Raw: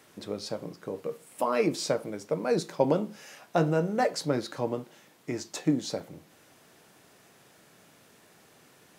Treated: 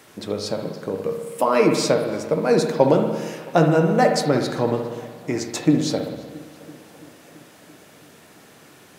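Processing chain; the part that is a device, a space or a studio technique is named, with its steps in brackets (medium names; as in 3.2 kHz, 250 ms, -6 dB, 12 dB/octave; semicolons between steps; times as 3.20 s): dub delay into a spring reverb (filtered feedback delay 335 ms, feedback 73%, low-pass 4.4 kHz, level -21.5 dB; spring tank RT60 1.3 s, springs 60 ms, chirp 20 ms, DRR 4.5 dB); trim +8 dB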